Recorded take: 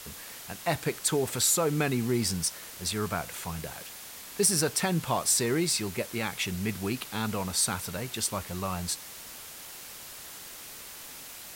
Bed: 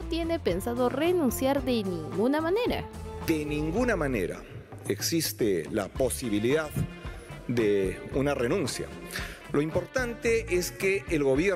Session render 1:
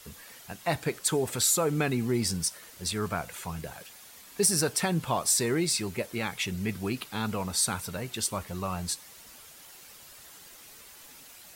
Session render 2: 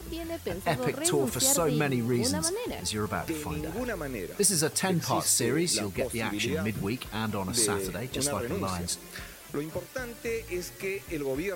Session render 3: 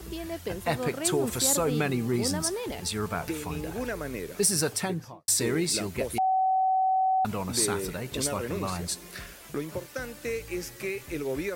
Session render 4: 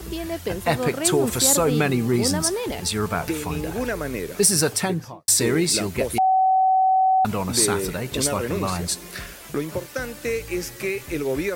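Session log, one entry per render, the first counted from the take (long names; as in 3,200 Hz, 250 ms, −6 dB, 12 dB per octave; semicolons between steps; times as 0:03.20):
broadband denoise 8 dB, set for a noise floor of −45 dBFS
mix in bed −7 dB
0:04.69–0:05.28: fade out and dull; 0:06.18–0:07.25: beep over 757 Hz −21 dBFS
level +6.5 dB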